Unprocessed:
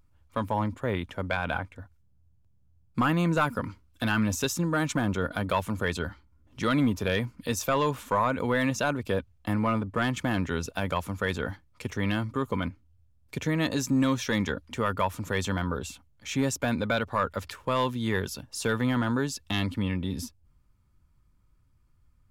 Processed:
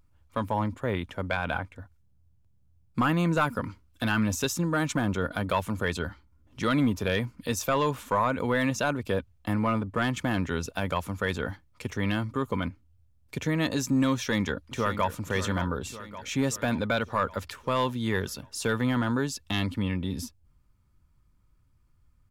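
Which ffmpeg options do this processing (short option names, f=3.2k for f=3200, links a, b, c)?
-filter_complex "[0:a]asplit=2[a][b];[b]afade=t=in:st=14.14:d=0.01,afade=t=out:st=15.09:d=0.01,aecho=0:1:570|1140|1710|2280|2850|3420|3990:0.281838|0.169103|0.101462|0.0608771|0.0365262|0.0219157|0.0131494[c];[a][c]amix=inputs=2:normalize=0"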